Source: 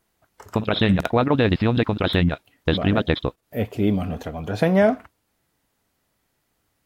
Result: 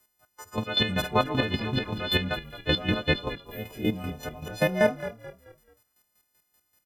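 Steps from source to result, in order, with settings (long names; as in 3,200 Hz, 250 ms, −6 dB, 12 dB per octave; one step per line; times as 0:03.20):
every partial snapped to a pitch grid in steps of 3 semitones
square-wave tremolo 5.2 Hz, depth 65%, duty 30%
echo with shifted repeats 217 ms, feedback 37%, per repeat −37 Hz, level −13.5 dB
level −3.5 dB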